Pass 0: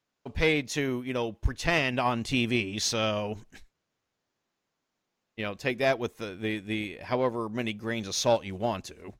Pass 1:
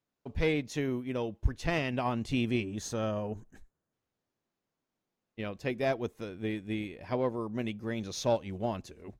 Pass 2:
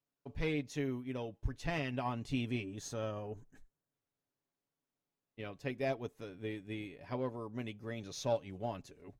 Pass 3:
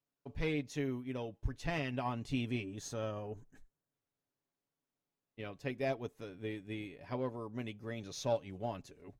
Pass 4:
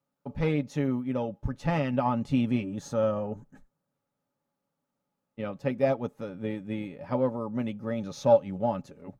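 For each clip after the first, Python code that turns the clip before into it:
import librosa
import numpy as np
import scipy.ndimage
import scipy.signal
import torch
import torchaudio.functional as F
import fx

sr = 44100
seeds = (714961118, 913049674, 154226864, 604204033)

y1 = fx.spec_box(x, sr, start_s=2.64, length_s=1.29, low_hz=1900.0, high_hz=6000.0, gain_db=-8)
y1 = fx.tilt_shelf(y1, sr, db=4.0, hz=740.0)
y1 = y1 * librosa.db_to_amplitude(-5.0)
y2 = y1 + 0.45 * np.pad(y1, (int(7.1 * sr / 1000.0), 0))[:len(y1)]
y2 = y2 * librosa.db_to_amplitude(-7.0)
y3 = y2
y4 = fx.small_body(y3, sr, hz=(200.0, 550.0, 840.0, 1200.0), ring_ms=25, db=15)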